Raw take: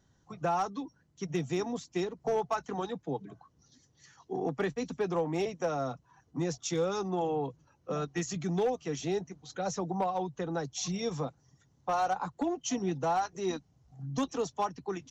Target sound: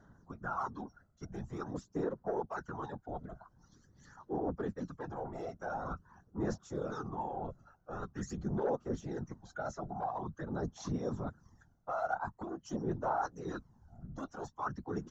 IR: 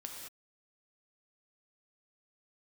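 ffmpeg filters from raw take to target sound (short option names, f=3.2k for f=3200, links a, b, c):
-af "afftfilt=real='hypot(re,im)*cos(2*PI*random(0))':imag='hypot(re,im)*sin(2*PI*random(1))':win_size=512:overlap=0.75,areverse,acompressor=threshold=-47dB:ratio=4,areverse,aphaser=in_gain=1:out_gain=1:delay=1.5:decay=0.54:speed=0.46:type=sinusoidal,highshelf=f=1.9k:t=q:w=3:g=-8,volume=7dB"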